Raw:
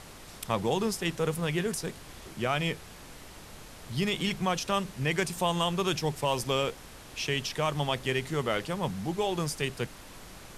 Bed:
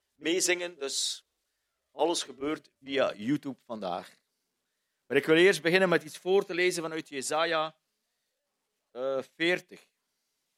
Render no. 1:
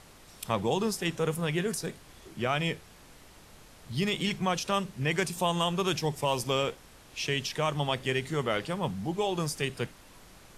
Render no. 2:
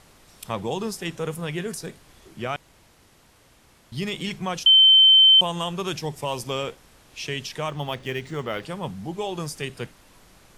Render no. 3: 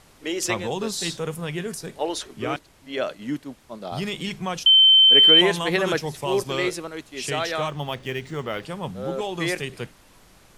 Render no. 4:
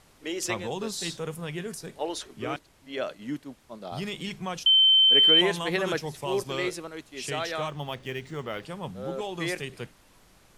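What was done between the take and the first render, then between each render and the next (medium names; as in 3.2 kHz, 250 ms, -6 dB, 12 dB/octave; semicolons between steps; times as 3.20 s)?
noise print and reduce 6 dB
2.56–3.92 s: room tone; 4.66–5.41 s: bleep 3.09 kHz -10 dBFS; 7.68–8.63 s: decimation joined by straight lines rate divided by 3×
add bed +0.5 dB
trim -5 dB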